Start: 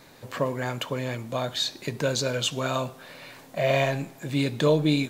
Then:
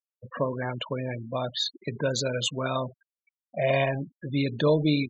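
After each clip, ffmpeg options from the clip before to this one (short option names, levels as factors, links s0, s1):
-af "afftfilt=real='re*gte(hypot(re,im),0.0398)':imag='im*gte(hypot(re,im),0.0398)':win_size=1024:overlap=0.75,volume=0.891"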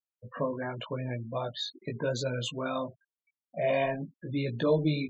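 -af "highshelf=f=3100:g=-7.5,flanger=delay=16.5:depth=2.7:speed=0.89"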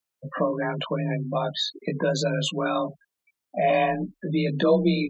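-filter_complex "[0:a]afreqshift=29,asplit=2[s0][s1];[s1]acompressor=threshold=0.0158:ratio=6,volume=1[s2];[s0][s2]amix=inputs=2:normalize=0,volume=1.58"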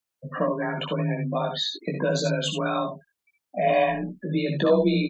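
-af "aecho=1:1:63|75:0.376|0.398,volume=0.891"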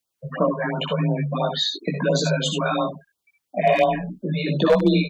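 -af "aeval=exprs='0.251*(abs(mod(val(0)/0.251+3,4)-2)-1)':c=same,afftfilt=real='re*(1-between(b*sr/1024,270*pow(2200/270,0.5+0.5*sin(2*PI*2.9*pts/sr))/1.41,270*pow(2200/270,0.5+0.5*sin(2*PI*2.9*pts/sr))*1.41))':imag='im*(1-between(b*sr/1024,270*pow(2200/270,0.5+0.5*sin(2*PI*2.9*pts/sr))/1.41,270*pow(2200/270,0.5+0.5*sin(2*PI*2.9*pts/sr))*1.41))':win_size=1024:overlap=0.75,volume=1.68"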